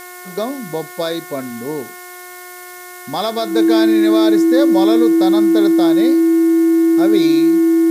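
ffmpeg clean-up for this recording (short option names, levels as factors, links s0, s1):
-af "adeclick=t=4,bandreject=f=360.1:t=h:w=4,bandreject=f=720.2:t=h:w=4,bandreject=f=1080.3:t=h:w=4,bandreject=f=1440.4:t=h:w=4,bandreject=f=1800.5:t=h:w=4,bandreject=f=2160.6:t=h:w=4,bandreject=f=330:w=30,afftdn=nr=27:nf=-34"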